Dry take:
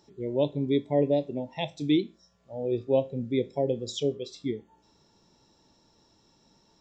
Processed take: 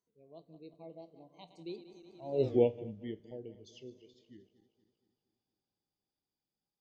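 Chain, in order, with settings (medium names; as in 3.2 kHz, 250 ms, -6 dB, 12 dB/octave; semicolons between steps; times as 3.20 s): backward echo that repeats 105 ms, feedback 75%, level -14 dB; Doppler pass-by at 2.49 s, 42 m/s, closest 2.3 m; trim +4.5 dB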